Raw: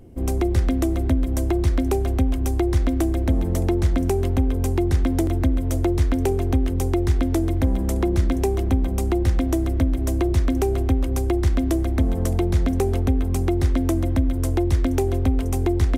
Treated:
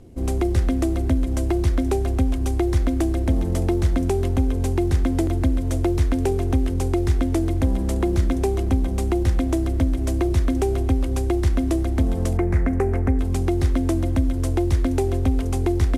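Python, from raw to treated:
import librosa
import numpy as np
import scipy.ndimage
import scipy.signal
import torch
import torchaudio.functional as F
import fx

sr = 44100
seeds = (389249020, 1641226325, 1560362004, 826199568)

y = fx.cvsd(x, sr, bps=64000)
y = fx.high_shelf_res(y, sr, hz=2600.0, db=-9.5, q=3.0, at=(12.37, 13.19))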